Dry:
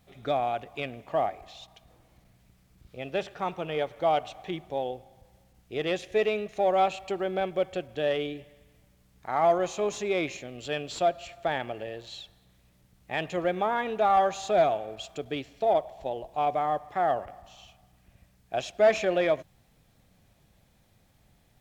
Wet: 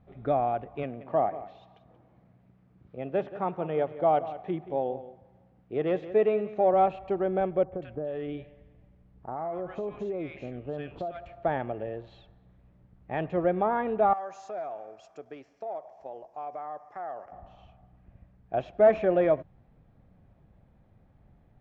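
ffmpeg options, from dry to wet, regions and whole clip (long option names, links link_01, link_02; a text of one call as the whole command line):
ffmpeg -i in.wav -filter_complex "[0:a]asettb=1/sr,asplit=3[link_01][link_02][link_03];[link_01]atrim=end=0.834[link_04];[link_02]atrim=start=0.83:end=6.74,asetpts=PTS-STARTPTS,afade=type=in:duration=0.004:curve=qsin,afade=type=out:start_time=5.906:duration=0.004:curve=qsin,highpass=130,aecho=1:1:179:0.188,atrim=end_sample=260631[link_05];[link_03]atrim=start=6.736[link_06];[link_04][link_05]acrossfade=duration=0.004:curve1=hsin:curve2=qsin[link_07];[link_07][link_06]acrossfade=duration=0.004:curve1=qsin:curve2=hsin,asettb=1/sr,asplit=3[link_08][link_09][link_10];[link_08]atrim=end=7.634[link_11];[link_09]atrim=start=7.63:end=11.26,asetpts=PTS-STARTPTS,afade=type=in:duration=0.004:curve=qsin,afade=type=out:start_time=3.626:duration=0.004:curve=qsin,acrossover=split=1300[link_12][link_13];[link_13]adelay=90[link_14];[link_12][link_14]amix=inputs=2:normalize=0,atrim=end_sample=160083,acompressor=threshold=-31dB:ratio=12:attack=3.2:release=140:knee=1:detection=peak[link_15];[link_10]atrim=start=11.256[link_16];[link_11][link_15]acrossfade=duration=0.004:curve1=hsin:curve2=qsin[link_17];[link_17][link_16]acrossfade=duration=0.004:curve1=qsin:curve2=hsin,asettb=1/sr,asplit=3[link_18][link_19][link_20];[link_18]atrim=end=14.134[link_21];[link_19]atrim=start=14.13:end=17.32,asetpts=PTS-STARTPTS,afade=type=in:duration=0.004:curve=qsin,afade=type=out:start_time=3.186:duration=0.004:curve=qsin,highpass=frequency=1300:poles=1,acompressor=threshold=-36dB:ratio=2.5:attack=3.2:release=140:knee=1:detection=peak,highshelf=frequency=4500:width_type=q:width=3:gain=8[link_22];[link_20]atrim=start=17.316[link_23];[link_21][link_22]acrossfade=duration=0.004:curve1=hsin:curve2=qsin[link_24];[link_24][link_23]acrossfade=duration=0.004:curve1=qsin:curve2=hsin,lowpass=1400,lowshelf=frequency=430:gain=5" out.wav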